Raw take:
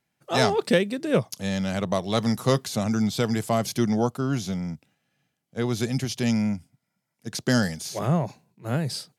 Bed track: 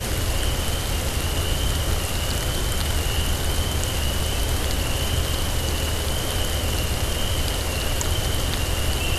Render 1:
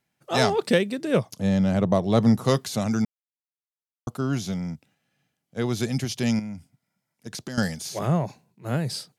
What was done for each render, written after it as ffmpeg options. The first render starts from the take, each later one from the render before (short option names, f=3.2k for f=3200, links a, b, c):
-filter_complex "[0:a]asettb=1/sr,asplit=3[a][b][c];[a]atrim=end=1.324[d];[b]atrim=start=1.32:end=2.45,asetpts=PTS-STARTPTS,afade=t=in:d=0.004:c=qsin,afade=t=out:st=1.126:d=0.004:c=qsin,tiltshelf=f=1.1k:g=6.5[e];[c]atrim=start=2.446[f];[d][e]acrossfade=d=0.004:c1=hsin:c2=qsin[g];[g][f]acrossfade=d=0.004:c1=qsin:c2=hsin,asettb=1/sr,asplit=3[h][i][j];[h]atrim=end=6.394[k];[i]atrim=start=6.39:end=7.58,asetpts=PTS-STARTPTS,afade=t=in:d=0.004:c=qsin,afade=t=out:st=1.186:d=0.004:c=qsin,acompressor=threshold=-30dB:ratio=12:attack=3.2:release=140:knee=1:detection=peak[l];[j]atrim=start=7.576[m];[k][l]acrossfade=d=0.004:c1=hsin:c2=qsin[n];[n][m]acrossfade=d=0.004:c1=qsin:c2=hsin,asplit=3[o][p][q];[o]atrim=end=3.05,asetpts=PTS-STARTPTS,afade=t=out:st=3.046:d=0.004:c=hsin[r];[p]atrim=start=3.05:end=4.07,asetpts=PTS-STARTPTS,volume=0[s];[q]atrim=start=4.07,asetpts=PTS-STARTPTS,afade=t=in:d=0.004:c=hsin[t];[r][s][t]concat=n=3:v=0:a=1"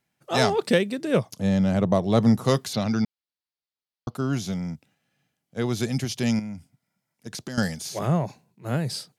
-filter_complex "[0:a]asettb=1/sr,asplit=3[a][b][c];[a]atrim=end=2.734[d];[b]atrim=start=2.73:end=4.15,asetpts=PTS-STARTPTS,afade=t=in:d=0.004:c=qsin,afade=t=out:st=1.416:d=0.004:c=qsin,highshelf=f=6k:t=q:w=3:g=-10[e];[c]atrim=start=4.146[f];[d][e]acrossfade=d=0.004:c1=hsin:c2=qsin[g];[g][f]acrossfade=d=0.004:c1=qsin:c2=hsin"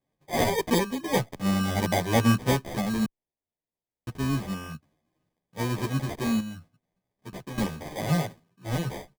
-filter_complex "[0:a]acrusher=samples=32:mix=1:aa=0.000001,asplit=2[a][b];[b]adelay=11.2,afreqshift=0.65[c];[a][c]amix=inputs=2:normalize=1"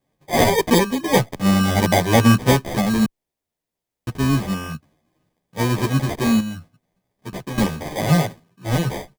-af "volume=8.5dB,alimiter=limit=-3dB:level=0:latency=1"